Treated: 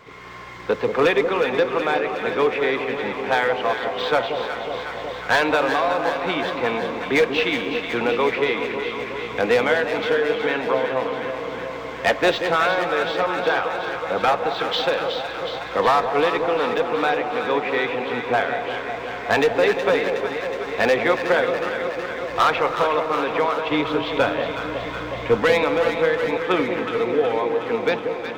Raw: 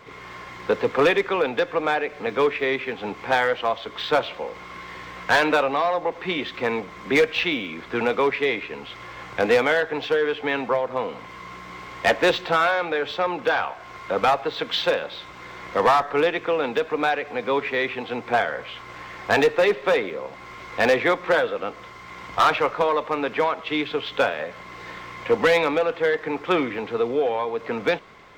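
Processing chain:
0:23.68–0:25.40: low-shelf EQ 180 Hz +11.5 dB
delay that swaps between a low-pass and a high-pass 184 ms, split 900 Hz, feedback 85%, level −6.5 dB
convolution reverb RT60 3.2 s, pre-delay 208 ms, DRR 12.5 dB

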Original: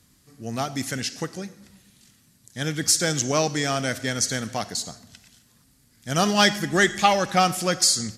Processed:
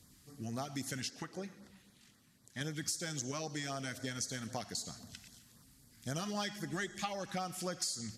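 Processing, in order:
0:01.10–0:02.61: bass and treble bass −7 dB, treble −9 dB
downward compressor 5 to 1, threshold −34 dBFS, peak gain reduction 19 dB
auto-filter notch sine 3.8 Hz 430–2,900 Hz
level −2.5 dB

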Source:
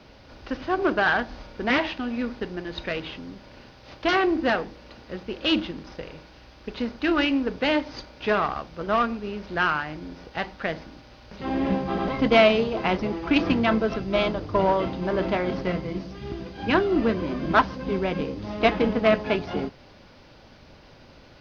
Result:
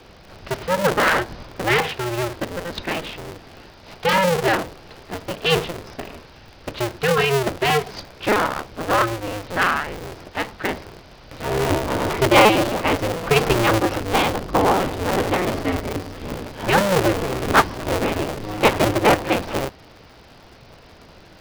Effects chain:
sub-harmonics by changed cycles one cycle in 2, inverted
level +4 dB

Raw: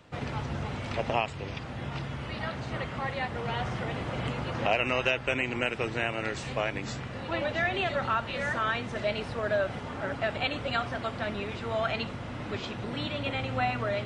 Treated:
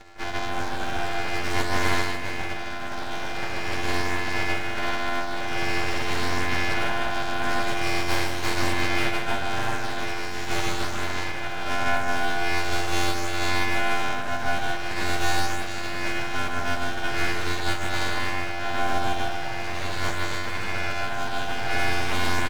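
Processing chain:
samples sorted by size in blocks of 128 samples
in parallel at −1 dB: brickwall limiter −21.5 dBFS, peak gain reduction 10 dB
on the sum: rotating-speaker cabinet horn 0.7 Hz
loudspeaker in its box 350–5,600 Hz, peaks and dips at 440 Hz +8 dB, 640 Hz −8 dB, 930 Hz +4 dB, 1,500 Hz +4 dB, 3,100 Hz −4 dB
floating-point word with a short mantissa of 4 bits
harmonic generator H 3 −26 dB, 5 −11 dB, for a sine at −12.5 dBFS
ring modulation 390 Hz
time stretch by phase vocoder 1.6×
parametric band 1,000 Hz +3.5 dB 1.8 octaves
notch filter 2,000 Hz, Q 20
full-wave rectification
on a send: single-tap delay 154 ms −5.5 dB
on the sum: level +3.5 dB

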